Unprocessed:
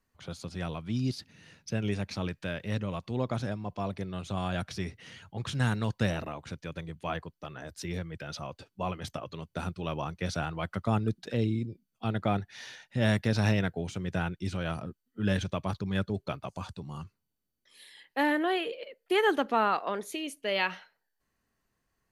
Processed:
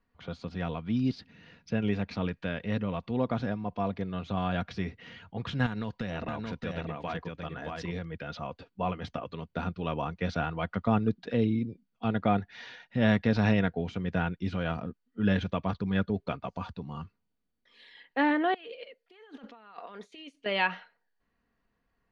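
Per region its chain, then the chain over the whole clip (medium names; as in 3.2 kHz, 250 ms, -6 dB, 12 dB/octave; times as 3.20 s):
5.66–8.05 s: treble shelf 4.3 kHz +5.5 dB + compression 12:1, threshold -31 dBFS + delay 625 ms -3.5 dB
18.54–20.46 s: pre-emphasis filter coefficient 0.8 + compressor with a negative ratio -50 dBFS
whole clip: Bessel low-pass 3 kHz, order 4; comb 4.2 ms, depth 35%; trim +2 dB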